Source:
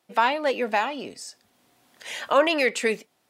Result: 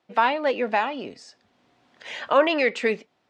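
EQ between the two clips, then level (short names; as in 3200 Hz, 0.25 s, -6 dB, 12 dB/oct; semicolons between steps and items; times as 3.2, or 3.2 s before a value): air absorption 150 m; +1.5 dB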